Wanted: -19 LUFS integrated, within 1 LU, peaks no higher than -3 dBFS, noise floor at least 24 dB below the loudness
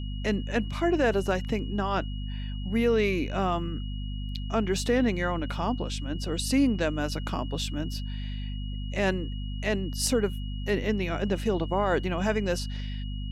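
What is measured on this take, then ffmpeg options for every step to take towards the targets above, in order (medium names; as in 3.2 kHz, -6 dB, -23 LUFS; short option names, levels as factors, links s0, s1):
hum 50 Hz; highest harmonic 250 Hz; hum level -31 dBFS; steady tone 2.9 kHz; tone level -46 dBFS; loudness -29.0 LUFS; peak level -13.5 dBFS; loudness target -19.0 LUFS
-> -af "bandreject=f=50:t=h:w=4,bandreject=f=100:t=h:w=4,bandreject=f=150:t=h:w=4,bandreject=f=200:t=h:w=4,bandreject=f=250:t=h:w=4"
-af "bandreject=f=2900:w=30"
-af "volume=3.16"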